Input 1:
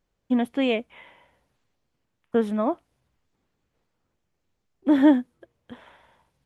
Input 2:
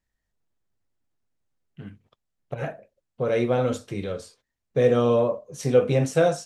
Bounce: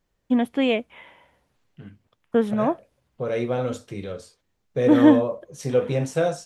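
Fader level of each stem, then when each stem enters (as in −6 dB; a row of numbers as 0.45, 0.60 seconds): +2.0, −2.5 decibels; 0.00, 0.00 seconds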